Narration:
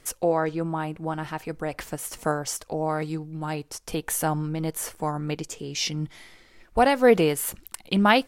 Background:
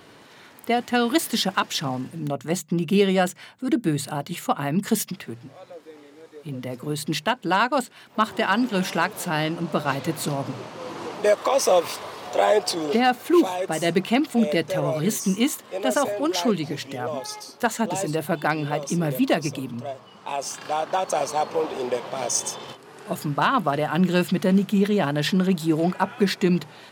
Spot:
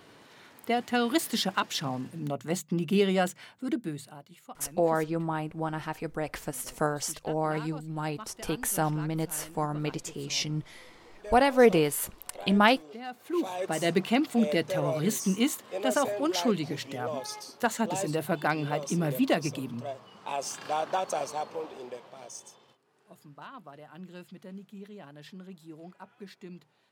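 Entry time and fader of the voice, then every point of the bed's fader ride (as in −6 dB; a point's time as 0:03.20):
4.55 s, −2.5 dB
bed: 0:03.61 −5.5 dB
0:04.32 −22.5 dB
0:12.98 −22.5 dB
0:13.66 −4.5 dB
0:20.89 −4.5 dB
0:22.81 −25 dB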